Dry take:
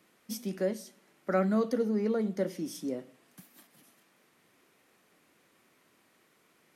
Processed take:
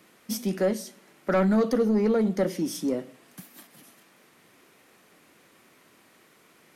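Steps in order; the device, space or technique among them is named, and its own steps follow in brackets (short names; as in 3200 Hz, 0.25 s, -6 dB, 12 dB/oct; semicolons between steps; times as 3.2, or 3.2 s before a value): saturation between pre-emphasis and de-emphasis (high shelf 2300 Hz +10 dB; soft clip -24 dBFS, distortion -13 dB; high shelf 2300 Hz -10 dB); gain +8.5 dB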